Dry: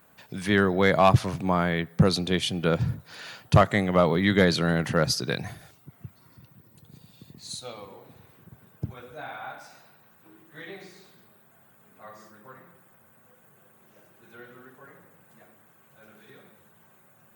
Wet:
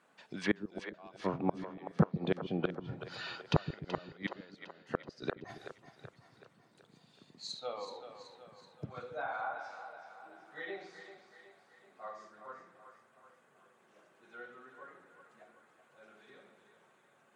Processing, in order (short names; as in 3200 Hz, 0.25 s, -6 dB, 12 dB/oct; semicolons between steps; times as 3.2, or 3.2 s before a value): spectral noise reduction 7 dB; BPF 260–6500 Hz; flipped gate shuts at -16 dBFS, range -36 dB; treble ducked by the level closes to 1800 Hz, closed at -34 dBFS; on a send: split-band echo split 400 Hz, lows 0.139 s, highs 0.378 s, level -10 dB; on the sum: gain +1 dB